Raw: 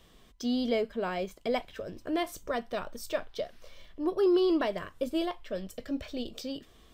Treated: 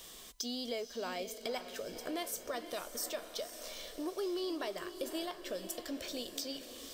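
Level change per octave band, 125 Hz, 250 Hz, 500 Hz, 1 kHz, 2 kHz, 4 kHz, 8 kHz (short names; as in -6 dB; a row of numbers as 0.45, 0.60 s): -12.5, -11.0, -9.0, -7.5, -5.5, -0.5, +7.0 dB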